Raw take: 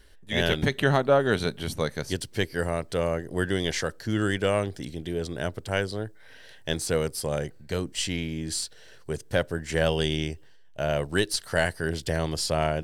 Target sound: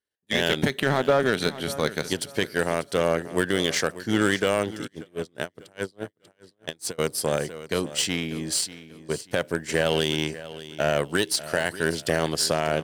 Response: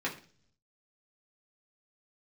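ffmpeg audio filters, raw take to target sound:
-filter_complex "[0:a]aemphasis=mode=production:type=cd,agate=range=0.0224:threshold=0.0178:ratio=3:detection=peak,highpass=170,highshelf=f=4500:g=-7.5,alimiter=limit=0.141:level=0:latency=1:release=41,acontrast=89,aeval=exprs='0.266*(cos(1*acos(clip(val(0)/0.266,-1,1)))-cos(1*PI/2))+0.0376*(cos(3*acos(clip(val(0)/0.266,-1,1)))-cos(3*PI/2))':c=same,aecho=1:1:590|1180|1770:0.168|0.0487|0.0141,asplit=3[s0][s1][s2];[s0]afade=t=out:st=4.86:d=0.02[s3];[s1]aeval=exprs='val(0)*pow(10,-33*(0.5-0.5*cos(2*PI*4.8*n/s))/20)':c=same,afade=t=in:st=4.86:d=0.02,afade=t=out:st=6.98:d=0.02[s4];[s2]afade=t=in:st=6.98:d=0.02[s5];[s3][s4][s5]amix=inputs=3:normalize=0"

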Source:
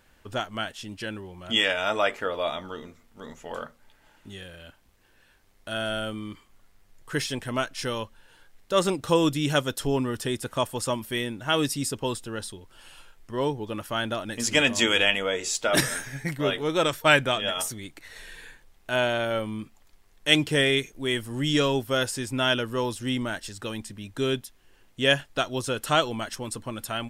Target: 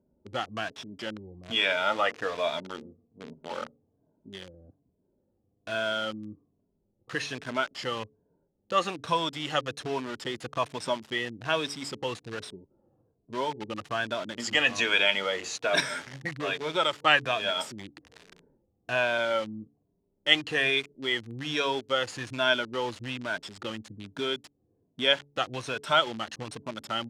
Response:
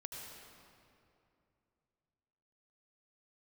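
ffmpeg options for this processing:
-filter_complex "[0:a]afftfilt=real='re*pow(10,11/40*sin(2*PI*(1.6*log(max(b,1)*sr/1024/100)/log(2)-(-1.2)*(pts-256)/sr)))':imag='im*pow(10,11/40*sin(2*PI*(1.6*log(max(b,1)*sr/1024/100)/log(2)-(-1.2)*(pts-256)/sr)))':win_size=1024:overlap=0.75,acrossover=split=540[s0][s1];[s0]acompressor=threshold=0.02:ratio=6[s2];[s1]acrusher=bits=5:mix=0:aa=0.000001[s3];[s2][s3]amix=inputs=2:normalize=0,highpass=110,lowpass=4400,bandreject=f=143.1:t=h:w=4,bandreject=f=286.2:t=h:w=4,bandreject=f=429.3:t=h:w=4,volume=0.794"

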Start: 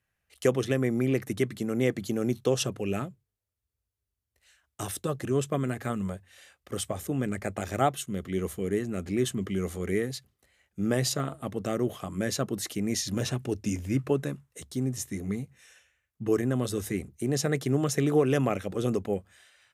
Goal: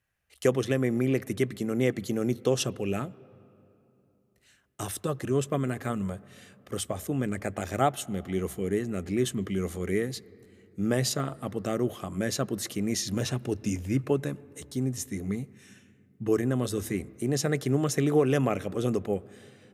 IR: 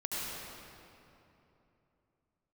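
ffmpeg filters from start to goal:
-filter_complex "[0:a]asplit=2[s0][s1];[1:a]atrim=start_sample=2205,lowpass=2600[s2];[s1][s2]afir=irnorm=-1:irlink=0,volume=0.0531[s3];[s0][s3]amix=inputs=2:normalize=0"

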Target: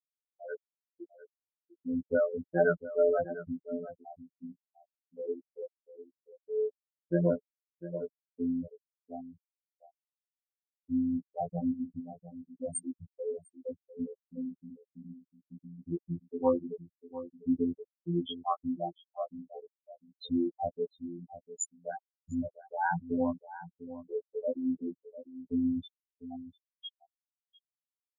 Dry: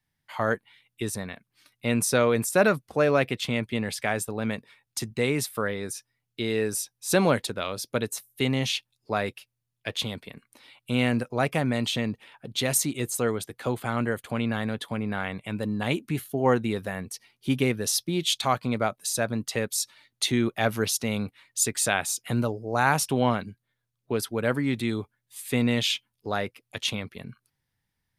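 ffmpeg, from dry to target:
-filter_complex "[0:a]afftfilt=real='re*gte(hypot(re,im),0.398)':imag='im*gte(hypot(re,im),0.398)':win_size=1024:overlap=0.75,afftfilt=real='hypot(re,im)*cos(PI*b)':imag='0':win_size=2048:overlap=0.75,asplit=2[s0][s1];[s1]adelay=699.7,volume=0.2,highshelf=f=4000:g=-15.7[s2];[s0][s2]amix=inputs=2:normalize=0"

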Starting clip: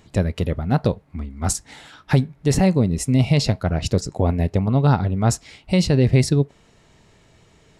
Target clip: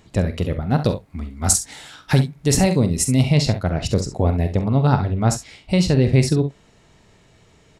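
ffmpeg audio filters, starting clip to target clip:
-filter_complex "[0:a]asettb=1/sr,asplit=3[s0][s1][s2];[s0]atrim=end=0.814[s3];[s1]atrim=start=0.81:end=3.23,asetpts=PTS-STARTPTS,afade=t=in:d=0.004:c=qsin,afade=t=out:st=2.416:d=0.004:c=qsin,highshelf=f=3900:g=9.5[s4];[s2]atrim=start=3.226[s5];[s3][s4]acrossfade=d=0.004:c1=hsin:c2=qsin[s6];[s6][s5]acrossfade=d=0.004:c1=qsin:c2=hsin,aecho=1:1:45|66:0.282|0.237"

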